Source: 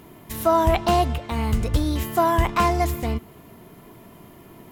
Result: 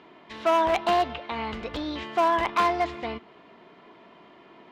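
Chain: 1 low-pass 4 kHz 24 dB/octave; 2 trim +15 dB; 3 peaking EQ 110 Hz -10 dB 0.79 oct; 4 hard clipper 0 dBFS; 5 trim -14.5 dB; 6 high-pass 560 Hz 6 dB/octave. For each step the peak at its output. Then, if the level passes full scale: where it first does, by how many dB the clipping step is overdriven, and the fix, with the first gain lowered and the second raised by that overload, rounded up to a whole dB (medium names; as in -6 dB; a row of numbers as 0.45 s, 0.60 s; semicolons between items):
-8.5 dBFS, +6.5 dBFS, +6.0 dBFS, 0.0 dBFS, -14.5 dBFS, -11.0 dBFS; step 2, 6.0 dB; step 2 +9 dB, step 5 -8.5 dB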